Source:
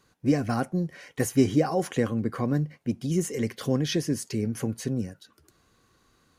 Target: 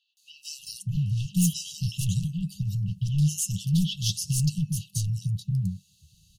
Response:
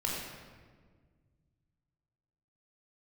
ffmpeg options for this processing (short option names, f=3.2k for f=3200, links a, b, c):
-filter_complex "[0:a]acrossover=split=970|3100[a][b][c];[c]adelay=170[d];[a]adelay=630[e];[e][b][d]amix=inputs=3:normalize=0,aeval=exprs='0.376*sin(PI/2*3.98*val(0)/0.376)':c=same,afftfilt=real='re*(1-between(b*sr/4096,200,2600))':imag='im*(1-between(b*sr/4096,200,2600))':win_size=4096:overlap=0.75,volume=-7.5dB"